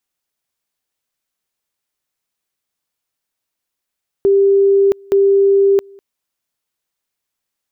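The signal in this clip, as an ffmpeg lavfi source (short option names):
-f lavfi -i "aevalsrc='pow(10,(-8-29*gte(mod(t,0.87),0.67))/20)*sin(2*PI*395*t)':d=1.74:s=44100"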